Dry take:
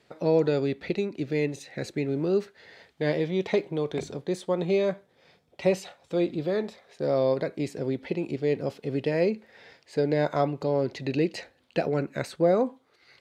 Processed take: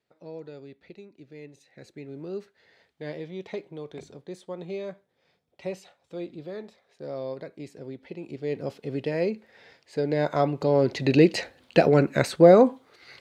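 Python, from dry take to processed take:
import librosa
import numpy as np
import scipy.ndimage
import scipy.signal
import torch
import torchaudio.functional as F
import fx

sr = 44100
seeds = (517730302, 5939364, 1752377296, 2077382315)

y = fx.gain(x, sr, db=fx.line((1.36, -18.0), (2.34, -10.0), (8.1, -10.0), (8.66, -2.0), (9.98, -2.0), (11.19, 8.0)))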